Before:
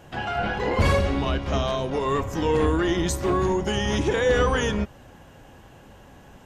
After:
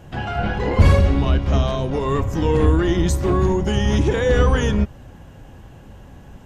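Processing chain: low shelf 230 Hz +11 dB

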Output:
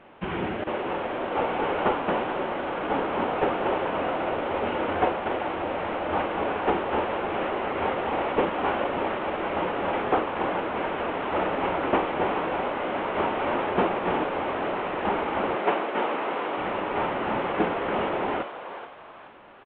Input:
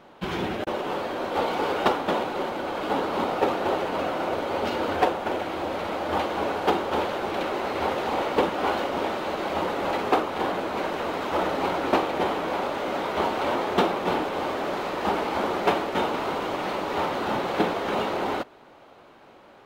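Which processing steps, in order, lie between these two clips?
CVSD 16 kbps; 15.55–16.58 HPF 260 Hz 12 dB/oct; on a send: frequency-shifting echo 0.426 s, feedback 36%, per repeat +140 Hz, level -11 dB

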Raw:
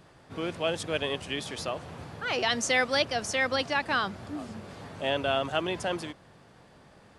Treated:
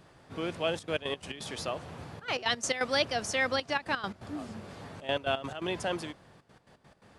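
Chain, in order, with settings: step gate "xxxxxxxxx.x.x.x." 171 bpm -12 dB; gain -1.5 dB

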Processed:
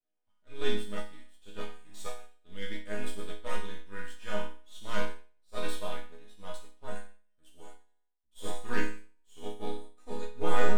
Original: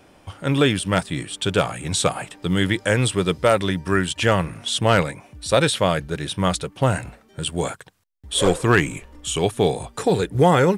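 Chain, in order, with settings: half-wave gain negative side -12 dB; resonator bank G#3 minor, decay 0.8 s; upward expander 2.5:1, over -46 dBFS; gain +14 dB

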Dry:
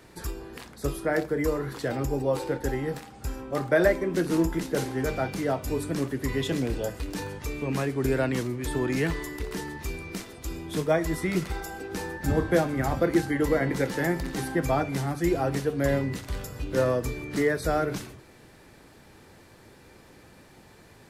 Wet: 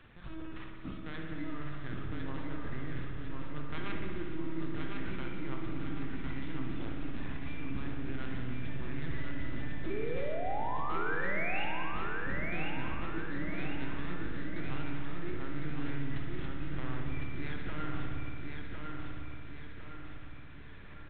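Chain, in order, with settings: tracing distortion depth 0.37 ms; band shelf 580 Hz -15 dB 1.2 oct; reverse; compressor 5:1, threshold -38 dBFS, peak gain reduction 17 dB; reverse; painted sound rise, 9.84–11.64, 360–2900 Hz -38 dBFS; LPC vocoder at 8 kHz pitch kept; on a send: feedback echo 1.055 s, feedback 49%, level -4 dB; on the sum: spring tank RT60 2.3 s, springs 56 ms, chirp 20 ms, DRR 1 dB; gain -2 dB

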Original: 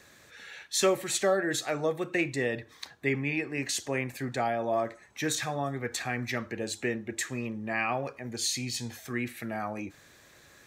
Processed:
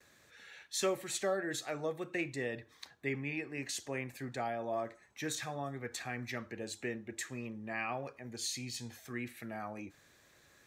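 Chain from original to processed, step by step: gate with hold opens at -48 dBFS; gain -8 dB

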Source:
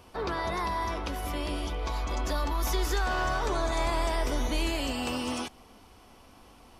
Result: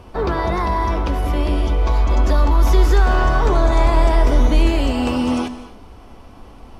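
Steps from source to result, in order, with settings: low shelf 270 Hz -6 dB; in parallel at -7 dB: short-mantissa float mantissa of 2-bit; on the sum: tilt -3 dB/oct; non-linear reverb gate 0.29 s flat, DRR 11 dB; gain +6.5 dB

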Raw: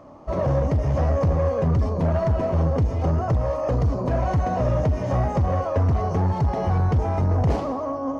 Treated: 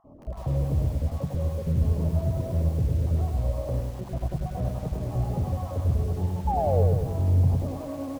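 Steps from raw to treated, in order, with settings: random spectral dropouts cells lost 31%; recorder AGC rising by 22 dB/s; high shelf 3900 Hz -6 dB; in parallel at -1 dB: limiter -21.5 dBFS, peak gain reduction 8.5 dB; on the sum: notches 50/100/150/200/250/300 Hz; on a send: echo 79 ms -16 dB; on the sum: short-mantissa float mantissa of 4-bit; EQ curve 140 Hz 0 dB, 840 Hz -11 dB, 1600 Hz -21 dB; painted sound fall, 6.47–6.83, 420–890 Hz -20 dBFS; lo-fi delay 0.1 s, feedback 55%, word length 7-bit, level -3 dB; gain -6.5 dB

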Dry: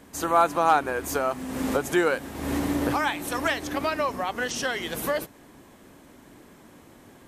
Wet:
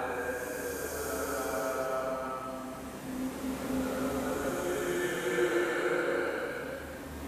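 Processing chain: added harmonics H 6 -38 dB, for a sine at -8.5 dBFS; Paulstretch 4.9×, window 0.50 s, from 0.88; gain -7 dB

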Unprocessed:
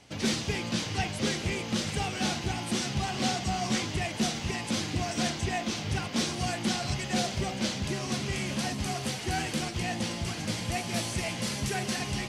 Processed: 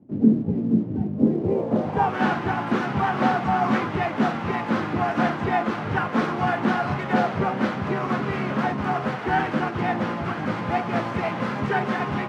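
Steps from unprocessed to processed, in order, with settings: low-pass sweep 250 Hz -> 1300 Hz, 1.16–2.21; harmoniser +3 st -8 dB, +12 st -18 dB; HPF 140 Hz 12 dB/oct; in parallel at -7.5 dB: crossover distortion -50 dBFS; on the sum: gain +4.5 dB

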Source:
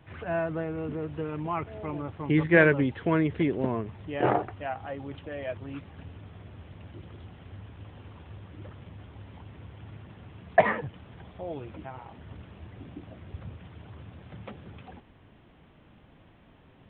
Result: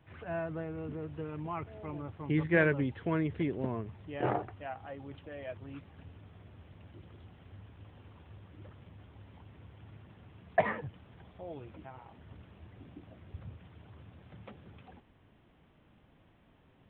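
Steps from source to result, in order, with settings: dynamic EQ 100 Hz, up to +4 dB, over -41 dBFS, Q 0.87; gain -7.5 dB

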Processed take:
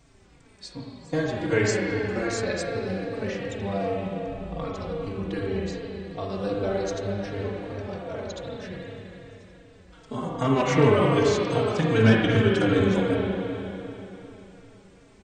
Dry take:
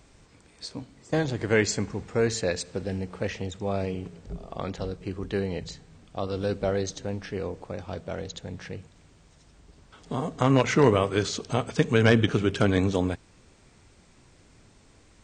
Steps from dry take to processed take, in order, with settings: spring tank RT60 3.5 s, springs 36/49 ms, chirp 40 ms, DRR -3 dB; endless flanger 3.8 ms -2.6 Hz

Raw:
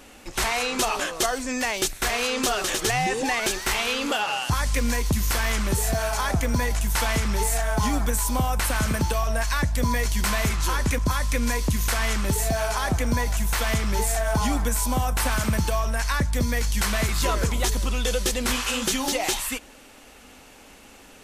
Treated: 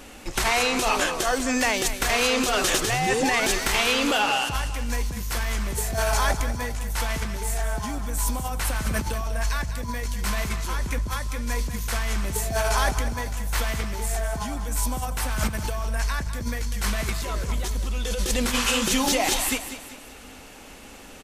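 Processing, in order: low shelf 160 Hz +3 dB; negative-ratio compressor -24 dBFS, ratio -0.5; feedback echo 0.196 s, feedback 43%, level -11.5 dB

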